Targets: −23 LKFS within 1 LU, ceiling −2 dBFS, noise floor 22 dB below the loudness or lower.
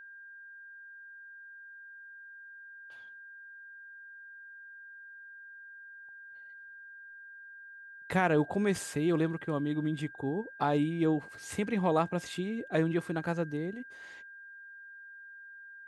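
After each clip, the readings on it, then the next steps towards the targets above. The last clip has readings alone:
interfering tone 1,600 Hz; level of the tone −47 dBFS; integrated loudness −31.5 LKFS; sample peak −14.0 dBFS; target loudness −23.0 LKFS
→ notch filter 1,600 Hz, Q 30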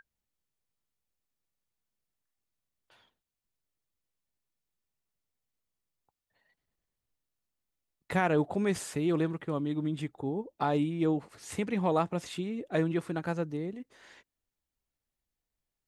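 interfering tone none found; integrated loudness −31.5 LKFS; sample peak −14.5 dBFS; target loudness −23.0 LKFS
→ level +8.5 dB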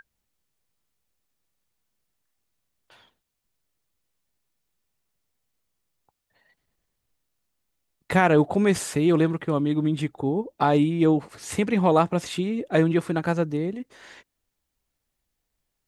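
integrated loudness −23.0 LKFS; sample peak −6.0 dBFS; background noise floor −80 dBFS

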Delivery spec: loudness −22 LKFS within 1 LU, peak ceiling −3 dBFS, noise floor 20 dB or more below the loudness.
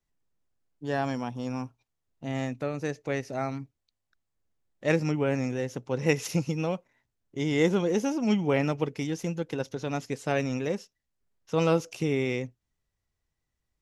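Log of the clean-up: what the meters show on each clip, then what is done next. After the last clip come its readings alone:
integrated loudness −29.5 LKFS; sample peak −8.5 dBFS; target loudness −22.0 LKFS
→ level +7.5 dB
brickwall limiter −3 dBFS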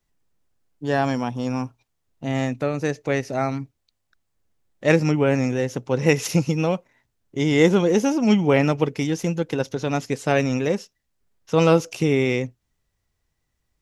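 integrated loudness −22.0 LKFS; sample peak −3.0 dBFS; background noise floor −75 dBFS

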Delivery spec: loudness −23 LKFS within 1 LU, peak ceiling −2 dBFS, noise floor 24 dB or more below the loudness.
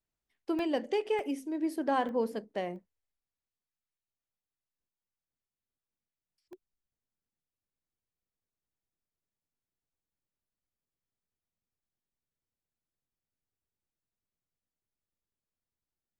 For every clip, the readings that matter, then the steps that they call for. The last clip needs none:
number of dropouts 5; longest dropout 1.2 ms; integrated loudness −33.0 LKFS; sample peak −17.5 dBFS; target loudness −23.0 LKFS
→ repair the gap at 0:00.59/0:01.19/0:02.09/0:02.76/0:06.53, 1.2 ms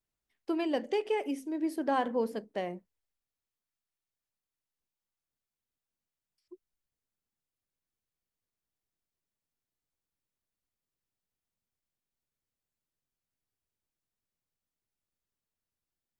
number of dropouts 0; integrated loudness −33.0 LKFS; sample peak −17.5 dBFS; target loudness −23.0 LKFS
→ level +10 dB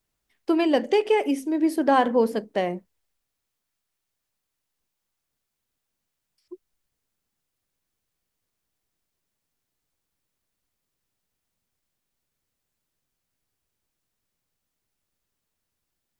integrated loudness −23.0 LKFS; sample peak −7.5 dBFS; background noise floor −82 dBFS

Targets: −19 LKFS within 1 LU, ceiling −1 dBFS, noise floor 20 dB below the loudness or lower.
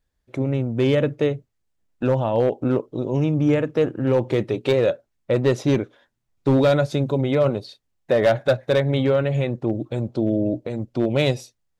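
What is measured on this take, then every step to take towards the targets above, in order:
share of clipped samples 0.7%; peaks flattened at −11.0 dBFS; integrated loudness −21.5 LKFS; sample peak −11.0 dBFS; target loudness −19.0 LKFS
→ clipped peaks rebuilt −11 dBFS
level +2.5 dB

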